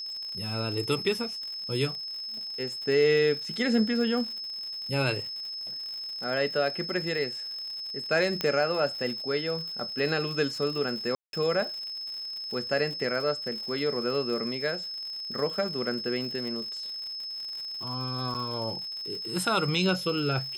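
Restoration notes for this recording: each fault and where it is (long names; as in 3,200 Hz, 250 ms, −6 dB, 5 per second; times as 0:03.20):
surface crackle 110 per second −36 dBFS
whistle 5,200 Hz −34 dBFS
0:08.41: click −13 dBFS
0:11.15–0:11.33: drop-out 182 ms
0:18.34–0:18.35: drop-out 7.8 ms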